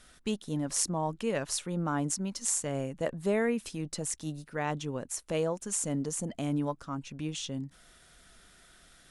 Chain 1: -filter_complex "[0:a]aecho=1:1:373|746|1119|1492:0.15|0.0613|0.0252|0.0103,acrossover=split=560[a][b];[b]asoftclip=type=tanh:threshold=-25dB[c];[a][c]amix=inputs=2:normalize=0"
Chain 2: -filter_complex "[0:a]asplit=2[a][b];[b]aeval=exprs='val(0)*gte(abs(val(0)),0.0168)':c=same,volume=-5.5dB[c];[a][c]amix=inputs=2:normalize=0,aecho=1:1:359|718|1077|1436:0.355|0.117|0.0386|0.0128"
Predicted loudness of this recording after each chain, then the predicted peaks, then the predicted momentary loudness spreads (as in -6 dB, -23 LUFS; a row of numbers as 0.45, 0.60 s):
-33.5, -29.0 LUFS; -19.0, -7.0 dBFS; 7, 8 LU